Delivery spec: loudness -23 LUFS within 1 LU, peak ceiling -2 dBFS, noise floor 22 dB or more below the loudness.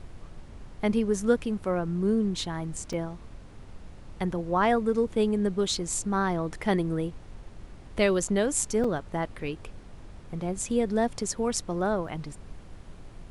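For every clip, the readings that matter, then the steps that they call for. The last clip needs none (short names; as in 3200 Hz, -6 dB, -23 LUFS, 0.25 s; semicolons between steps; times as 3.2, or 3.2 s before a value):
dropouts 3; longest dropout 4.1 ms; noise floor -47 dBFS; noise floor target -50 dBFS; loudness -28.0 LUFS; peak -10.0 dBFS; loudness target -23.0 LUFS
-> interpolate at 2.93/8.84/12.08, 4.1 ms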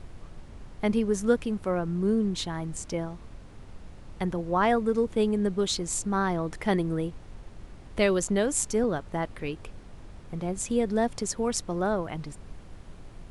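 dropouts 0; noise floor -47 dBFS; noise floor target -50 dBFS
-> noise print and reduce 6 dB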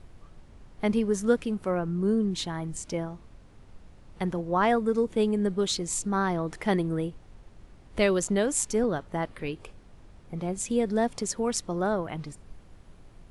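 noise floor -52 dBFS; loudness -28.0 LUFS; peak -10.0 dBFS; loudness target -23.0 LUFS
-> gain +5 dB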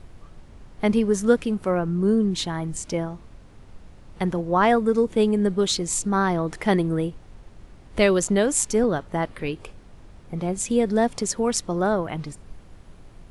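loudness -23.0 LUFS; peak -5.0 dBFS; noise floor -47 dBFS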